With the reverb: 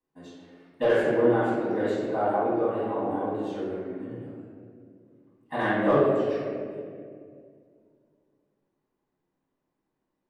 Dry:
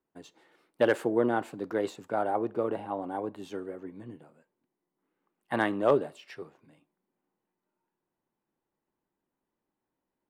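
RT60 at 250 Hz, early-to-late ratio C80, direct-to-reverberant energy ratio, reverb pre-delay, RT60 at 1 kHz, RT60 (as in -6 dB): 3.0 s, 0.5 dB, -12.5 dB, 4 ms, 1.8 s, 2.3 s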